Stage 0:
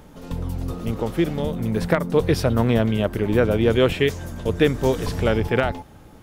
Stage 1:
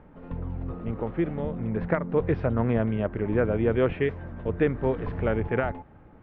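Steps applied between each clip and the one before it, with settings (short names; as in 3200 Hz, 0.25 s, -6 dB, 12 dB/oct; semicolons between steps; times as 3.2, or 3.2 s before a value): LPF 2200 Hz 24 dB/oct; gain -5.5 dB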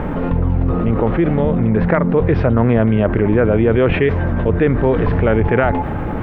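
fast leveller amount 70%; gain +7 dB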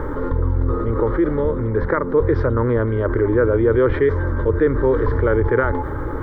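fixed phaser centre 710 Hz, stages 6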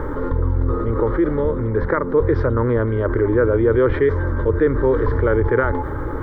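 nothing audible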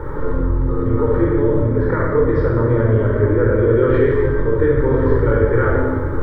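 shoebox room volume 1900 m³, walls mixed, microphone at 4.5 m; gain -7 dB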